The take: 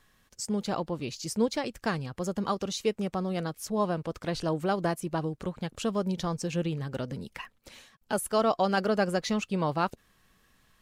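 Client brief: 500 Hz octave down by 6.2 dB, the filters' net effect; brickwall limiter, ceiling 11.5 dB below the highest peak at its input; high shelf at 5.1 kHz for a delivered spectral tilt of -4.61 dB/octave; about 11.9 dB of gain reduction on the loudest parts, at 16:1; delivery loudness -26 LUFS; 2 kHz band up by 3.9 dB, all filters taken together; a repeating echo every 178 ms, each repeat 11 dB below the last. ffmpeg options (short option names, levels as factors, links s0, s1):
-af "equalizer=f=500:t=o:g=-8.5,equalizer=f=2000:t=o:g=6.5,highshelf=f=5100:g=-3,acompressor=threshold=0.0178:ratio=16,alimiter=level_in=2.51:limit=0.0631:level=0:latency=1,volume=0.398,aecho=1:1:178|356|534:0.282|0.0789|0.0221,volume=6.31"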